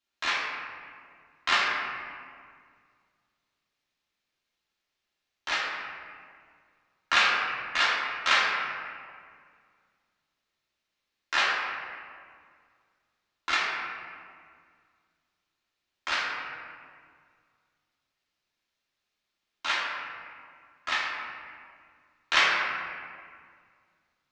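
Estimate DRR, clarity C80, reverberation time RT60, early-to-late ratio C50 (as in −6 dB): −6.5 dB, 1.5 dB, 2.0 s, −0.5 dB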